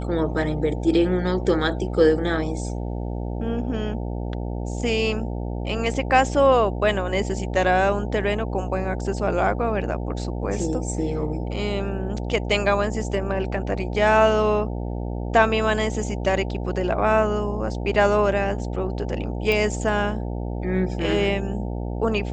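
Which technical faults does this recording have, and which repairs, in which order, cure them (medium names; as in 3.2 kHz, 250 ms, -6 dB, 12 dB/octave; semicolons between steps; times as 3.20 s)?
buzz 60 Hz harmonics 15 -28 dBFS
19.52 s: pop -11 dBFS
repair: de-click; de-hum 60 Hz, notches 15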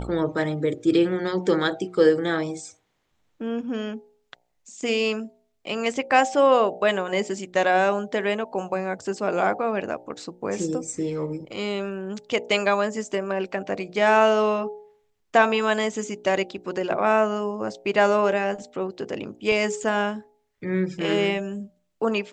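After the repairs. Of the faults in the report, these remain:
nothing left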